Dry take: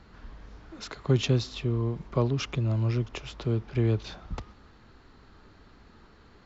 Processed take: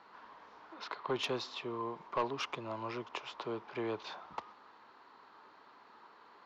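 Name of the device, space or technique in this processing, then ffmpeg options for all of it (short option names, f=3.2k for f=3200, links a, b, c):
intercom: -filter_complex "[0:a]asettb=1/sr,asplit=3[a][b][c];[a]atrim=end=0.744[d];[b]atrim=start=0.74:end=1.19,asetpts=PTS-STARTPTS,afade=t=in:d=0.004:c=qsin,afade=t=out:st=0.446:d=0.004:c=qsin,lowpass=f=5.3k:w=0.5412,lowpass=f=5.3k:w=1.3066[e];[c]atrim=start=1.186[f];[d][e]acrossfade=d=0.004:c1=hsin:c2=qsin[g];[g][f]acrossfade=d=0.004:c1=qsin:c2=hsin,highpass=440,lowpass=4.7k,equalizer=f=980:t=o:w=0.57:g=11,asoftclip=type=tanh:threshold=-21.5dB,volume=-3dB"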